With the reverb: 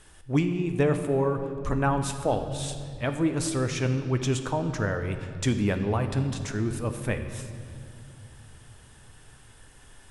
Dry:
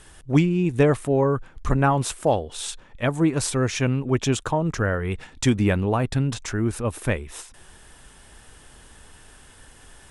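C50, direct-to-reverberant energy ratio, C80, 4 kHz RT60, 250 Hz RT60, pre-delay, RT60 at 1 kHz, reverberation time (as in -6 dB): 8.5 dB, 7.0 dB, 9.5 dB, 1.8 s, 3.7 s, 9 ms, 2.0 s, 2.3 s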